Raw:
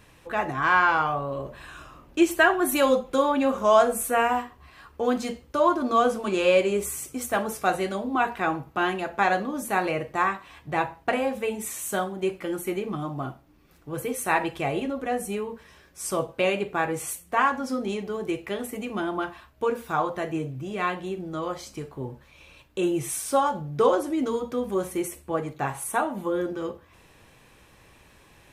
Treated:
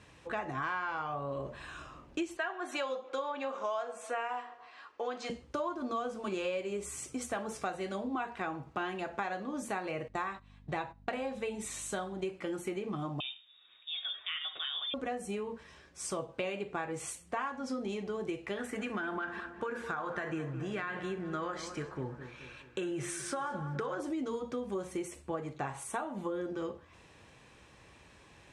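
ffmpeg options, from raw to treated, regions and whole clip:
ffmpeg -i in.wav -filter_complex "[0:a]asettb=1/sr,asplit=3[link_01][link_02][link_03];[link_01]atrim=end=2.374[link_04];[link_02]atrim=start=2.37:end=5.3,asetpts=PTS-STARTPTS,afade=type=in:duration=0.004:curve=qsin,afade=type=out:start_time=2.926:duration=0.004:curve=qsin,highpass=510,lowpass=5600,asplit=2[link_05][link_06];[link_06]adelay=144,lowpass=frequency=1800:poles=1,volume=-22dB,asplit=2[link_07][link_08];[link_08]adelay=144,lowpass=frequency=1800:poles=1,volume=0.5,asplit=2[link_09][link_10];[link_10]adelay=144,lowpass=frequency=1800:poles=1,volume=0.5[link_11];[link_05][link_07][link_09][link_11]amix=inputs=4:normalize=0,atrim=end_sample=129213[link_12];[link_03]atrim=start=5.296[link_13];[link_04][link_12]acrossfade=duration=0.004:curve1=hsin:curve2=qsin[link_14];[link_14][link_13]acrossfade=duration=0.004:curve1=qsin:curve2=hsin,asettb=1/sr,asplit=3[link_15][link_16][link_17];[link_15]atrim=end=10.084[link_18];[link_16]atrim=start=10.08:end=12.26,asetpts=PTS-STARTPTS,afade=type=in:duration=0.004:curve=qsin,afade=type=out:start_time=2.176:duration=0.004:curve=qsin,agate=range=-16dB:threshold=-40dB:ratio=16:release=100:detection=peak,equalizer=frequency=3900:width_type=o:width=0.2:gain=6.5,aeval=exprs='val(0)+0.00282*(sin(2*PI*50*n/s)+sin(2*PI*2*50*n/s)/2+sin(2*PI*3*50*n/s)/3+sin(2*PI*4*50*n/s)/4+sin(2*PI*5*50*n/s)/5)':channel_layout=same[link_19];[link_17]atrim=start=12.256[link_20];[link_18][link_19]acrossfade=duration=0.004:curve1=hsin:curve2=qsin[link_21];[link_21][link_20]acrossfade=duration=0.004:curve1=qsin:curve2=hsin,asettb=1/sr,asplit=3[link_22][link_23][link_24];[link_22]atrim=end=13.204[link_25];[link_23]atrim=start=13.2:end=14.94,asetpts=PTS-STARTPTS,afade=type=in:duration=0.004:curve=qsin,afade=type=out:start_time=1.736:duration=0.004:curve=qsin,acompressor=threshold=-33dB:ratio=2:attack=3.2:release=140:knee=1:detection=peak,lowpass=frequency=3200:width_type=q:width=0.5098,lowpass=frequency=3200:width_type=q:width=0.6013,lowpass=frequency=3200:width_type=q:width=0.9,lowpass=frequency=3200:width_type=q:width=2.563,afreqshift=-3800[link_26];[link_24]atrim=start=14.936[link_27];[link_25][link_26]acrossfade=duration=0.004:curve1=hsin:curve2=qsin[link_28];[link_28][link_27]acrossfade=duration=0.004:curve1=qsin:curve2=hsin,asettb=1/sr,asplit=3[link_29][link_30][link_31];[link_29]atrim=end=18.574[link_32];[link_30]atrim=start=18.57:end=24,asetpts=PTS-STARTPTS,afade=type=in:duration=0.004:curve=qsin,afade=type=out:start_time=5.426:duration=0.004:curve=qsin,equalizer=frequency=1600:width=2.3:gain=14,acompressor=threshold=-24dB:ratio=6:attack=3.2:release=140:knee=1:detection=peak,asplit=2[link_33][link_34];[link_34]adelay=211,lowpass=frequency=2300:poles=1,volume=-13dB,asplit=2[link_35][link_36];[link_36]adelay=211,lowpass=frequency=2300:poles=1,volume=0.54,asplit=2[link_37][link_38];[link_38]adelay=211,lowpass=frequency=2300:poles=1,volume=0.54,asplit=2[link_39][link_40];[link_40]adelay=211,lowpass=frequency=2300:poles=1,volume=0.54,asplit=2[link_41][link_42];[link_42]adelay=211,lowpass=frequency=2300:poles=1,volume=0.54,asplit=2[link_43][link_44];[link_44]adelay=211,lowpass=frequency=2300:poles=1,volume=0.54[link_45];[link_33][link_35][link_37][link_39][link_41][link_43][link_45]amix=inputs=7:normalize=0,atrim=end_sample=239463[link_46];[link_31]atrim=start=23.996[link_47];[link_32][link_46]acrossfade=duration=0.004:curve1=hsin:curve2=qsin[link_48];[link_48][link_47]acrossfade=duration=0.004:curve1=qsin:curve2=hsin,highpass=45,acompressor=threshold=-30dB:ratio=6,lowpass=frequency=8600:width=0.5412,lowpass=frequency=8600:width=1.3066,volume=-3dB" out.wav

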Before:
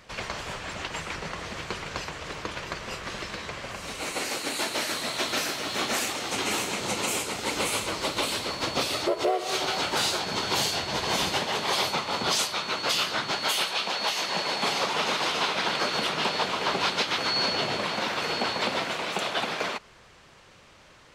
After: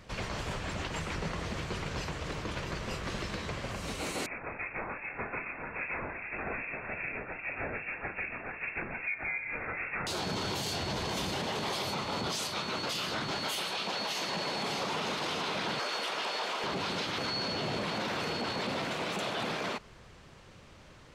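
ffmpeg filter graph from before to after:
ffmpeg -i in.wav -filter_complex "[0:a]asettb=1/sr,asplit=3[link_01][link_02][link_03];[link_01]atrim=end=4.264[link_04];[link_02]atrim=start=4.26:end=10.07,asetpts=PTS-STARTPTS,afade=type=in:duration=0.004:curve=qsin,afade=type=out:start_time=5.806:duration=0.004:curve=qsin,acrossover=split=1000[link_05][link_06];[link_05]aeval=exprs='val(0)*(1-0.7/2+0.7/2*cos(2*PI*2.5*n/s))':channel_layout=same[link_07];[link_06]aeval=exprs='val(0)*(1-0.7/2-0.7/2*cos(2*PI*2.5*n/s))':channel_layout=same[link_08];[link_07][link_08]amix=inputs=2:normalize=0,lowpass=frequency=2400:width_type=q:width=0.5098,lowpass=frequency=2400:width_type=q:width=0.6013,lowpass=frequency=2400:width_type=q:width=0.9,lowpass=frequency=2400:width_type=q:width=2.563,afreqshift=-2800[link_09];[link_03]atrim=start=10.066[link_10];[link_04][link_09]acrossfade=duration=0.004:curve1=hsin:curve2=qsin[link_11];[link_11][link_10]acrossfade=duration=0.004:curve1=qsin:curve2=hsin,asettb=1/sr,asplit=3[link_12][link_13][link_14];[link_12]atrim=end=15.794[link_15];[link_13]atrim=start=15.79:end=16.64,asetpts=PTS-STARTPTS,afade=type=in:duration=0.004:curve=qsin,afade=type=out:start_time=0.846:duration=0.004:curve=qsin,highpass=530,bandreject=frequency=4000:width=30[link_16];[link_14]atrim=start=16.636[link_17];[link_15][link_16]acrossfade=duration=0.004:curve1=hsin:curve2=qsin[link_18];[link_18][link_17]acrossfade=duration=0.004:curve1=qsin:curve2=hsin,lowshelf=frequency=370:gain=10,alimiter=limit=-21.5dB:level=0:latency=1:release=13,volume=-4dB" out.wav

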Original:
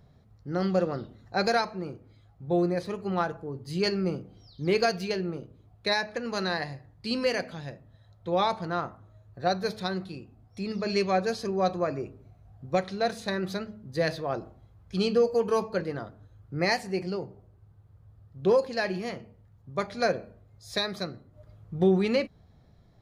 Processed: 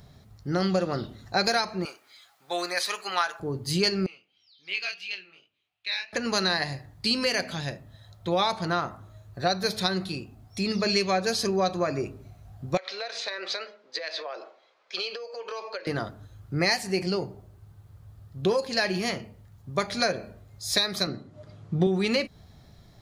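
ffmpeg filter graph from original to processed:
ffmpeg -i in.wav -filter_complex "[0:a]asettb=1/sr,asplit=3[link_01][link_02][link_03];[link_01]atrim=end=1.854[link_04];[link_02]atrim=start=1.85:end=3.4,asetpts=PTS-STARTPTS,afade=type=in:duration=0.004:curve=qsin,afade=type=out:start_time=1.546:duration=0.004:curve=qsin,highpass=1200,acontrast=39[link_05];[link_03]atrim=start=3.396[link_06];[link_04][link_05]acrossfade=duration=0.004:curve1=hsin:curve2=qsin[link_07];[link_07][link_06]acrossfade=duration=0.004:curve1=qsin:curve2=hsin,asettb=1/sr,asplit=3[link_08][link_09][link_10];[link_08]atrim=end=4.064[link_11];[link_09]atrim=start=4.06:end=6.13,asetpts=PTS-STARTPTS,afade=type=in:duration=0.004:curve=qsin,afade=type=out:start_time=2.066:duration=0.004:curve=qsin,bandpass=frequency=2700:width_type=q:width=4.3,flanger=delay=19.5:depth=5.9:speed=2.8[link_12];[link_10]atrim=start=6.126[link_13];[link_11][link_12]acrossfade=duration=0.004:curve1=hsin:curve2=qsin[link_14];[link_14][link_13]acrossfade=duration=0.004:curve1=qsin:curve2=hsin,asettb=1/sr,asplit=3[link_15][link_16][link_17];[link_15]atrim=end=12.774[link_18];[link_16]atrim=start=12.77:end=15.87,asetpts=PTS-STARTPTS,afade=type=in:duration=0.004:curve=qsin,afade=type=out:start_time=3.096:duration=0.004:curve=qsin,highpass=frequency=490:width=0.5412,highpass=frequency=490:width=1.3066,equalizer=frequency=510:width_type=q:width=4:gain=4,equalizer=frequency=780:width_type=q:width=4:gain=-4,equalizer=frequency=2300:width_type=q:width=4:gain=5,lowpass=frequency=5200:width=0.5412,lowpass=frequency=5200:width=1.3066,acompressor=threshold=-37dB:ratio=16:attack=3.2:release=140:knee=1:detection=peak[link_19];[link_17]atrim=start=15.866[link_20];[link_18][link_19]acrossfade=duration=0.004:curve1=hsin:curve2=qsin[link_21];[link_21][link_20]acrossfade=duration=0.004:curve1=qsin:curve2=hsin,asettb=1/sr,asplit=3[link_22][link_23][link_24];[link_22]atrim=end=21.074[link_25];[link_23]atrim=start=21.07:end=21.87,asetpts=PTS-STARTPTS,afade=type=in:duration=0.004:curve=qsin,afade=type=out:start_time=0.796:duration=0.004:curve=qsin,highpass=200,lowpass=6700,lowshelf=frequency=310:gain=11[link_26];[link_24]atrim=start=21.866[link_27];[link_25][link_26]acrossfade=duration=0.004:curve1=hsin:curve2=qsin[link_28];[link_28][link_27]acrossfade=duration=0.004:curve1=qsin:curve2=hsin,highshelf=frequency=2400:gain=11,acompressor=threshold=-28dB:ratio=3,bandreject=frequency=490:width=12,volume=5.5dB" out.wav

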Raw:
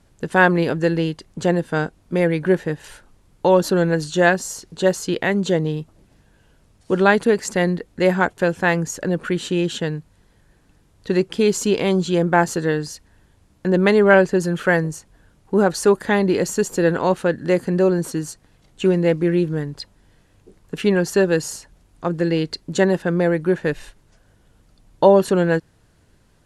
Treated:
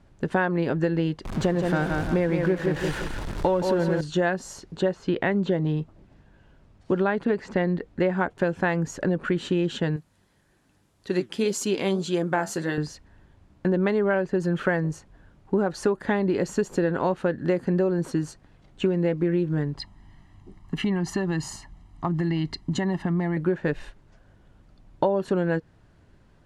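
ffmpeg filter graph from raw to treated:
ffmpeg -i in.wav -filter_complex "[0:a]asettb=1/sr,asplit=3[link_01][link_02][link_03];[link_01]atrim=end=1.254[link_04];[link_02]atrim=start=1.25:end=4.01,asetpts=PTS-STARTPTS,afade=type=in:duration=0.004:curve=qsin,afade=type=out:start_time=2.756:duration=0.004:curve=qsin,aeval=exprs='val(0)+0.5*0.0473*sgn(val(0))':channel_layout=same,aecho=1:1:170|340|510|680|850:0.501|0.19|0.0724|0.0275|0.0105,atrim=end_sample=121716[link_05];[link_03]atrim=start=4.006[link_06];[link_04][link_05]acrossfade=duration=0.004:curve1=hsin:curve2=qsin[link_07];[link_07][link_06]acrossfade=duration=0.004:curve1=qsin:curve2=hsin,asettb=1/sr,asplit=3[link_08][link_09][link_10];[link_08]atrim=end=4.814[link_11];[link_09]atrim=start=4.81:end=8.3,asetpts=PTS-STARTPTS,afade=type=in:duration=0.004:curve=qsin,afade=type=out:start_time=3.486:duration=0.004:curve=qsin,acrossover=split=4000[link_12][link_13];[link_13]acompressor=threshold=-44dB:ratio=4:attack=1:release=60[link_14];[link_12][link_14]amix=inputs=2:normalize=0,highshelf=frequency=11000:gain=-8[link_15];[link_10]atrim=start=8.296[link_16];[link_11][link_15]acrossfade=duration=0.004:curve1=hsin:curve2=qsin[link_17];[link_17][link_16]acrossfade=duration=0.004:curve1=qsin:curve2=hsin,asettb=1/sr,asplit=3[link_18][link_19][link_20];[link_18]atrim=end=9.964[link_21];[link_19]atrim=start=9.96:end=12.78,asetpts=PTS-STARTPTS,afade=type=in:duration=0.004:curve=qsin,afade=type=out:start_time=2.816:duration=0.004:curve=qsin,highpass=frequency=130:poles=1,flanger=delay=2.5:depth=8.1:regen=69:speed=1.8:shape=sinusoidal,aemphasis=mode=production:type=75fm[link_22];[link_20]atrim=start=12.776[link_23];[link_21][link_22]acrossfade=duration=0.004:curve1=hsin:curve2=qsin[link_24];[link_24][link_23]acrossfade=duration=0.004:curve1=qsin:curve2=hsin,asettb=1/sr,asplit=3[link_25][link_26][link_27];[link_25]atrim=end=19.774[link_28];[link_26]atrim=start=19.77:end=23.37,asetpts=PTS-STARTPTS,afade=type=in:duration=0.004:curve=qsin,afade=type=out:start_time=3.596:duration=0.004:curve=qsin,aecho=1:1:1:0.81,atrim=end_sample=158760,acompressor=threshold=-21dB:ratio=5:attack=3.2:release=140:knee=1:detection=peak[link_29];[link_27]atrim=start=23.366[link_30];[link_28][link_29]acrossfade=duration=0.004:curve1=hsin:curve2=qsin[link_31];[link_31][link_30]acrossfade=duration=0.004:curve1=qsin:curve2=hsin,aemphasis=mode=reproduction:type=75fm,bandreject=frequency=470:width=12,acompressor=threshold=-19dB:ratio=10" out.wav

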